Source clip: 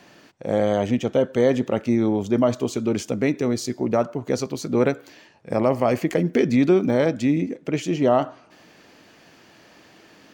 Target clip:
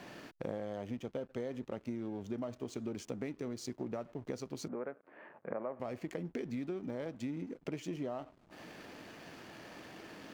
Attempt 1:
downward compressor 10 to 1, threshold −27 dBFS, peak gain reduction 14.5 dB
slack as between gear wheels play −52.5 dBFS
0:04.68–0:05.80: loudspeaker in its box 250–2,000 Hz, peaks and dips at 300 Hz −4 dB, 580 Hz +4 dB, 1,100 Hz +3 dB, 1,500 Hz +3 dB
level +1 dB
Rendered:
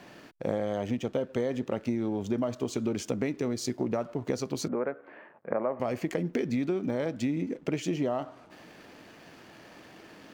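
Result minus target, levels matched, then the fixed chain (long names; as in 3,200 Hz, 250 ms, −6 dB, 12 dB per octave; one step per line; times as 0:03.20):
downward compressor: peak gain reduction −10 dB
downward compressor 10 to 1, threshold −38 dBFS, peak gain reduction 24.5 dB
slack as between gear wheels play −52.5 dBFS
0:04.68–0:05.80: loudspeaker in its box 250–2,000 Hz, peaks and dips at 300 Hz −4 dB, 580 Hz +4 dB, 1,100 Hz +3 dB, 1,500 Hz +3 dB
level +1 dB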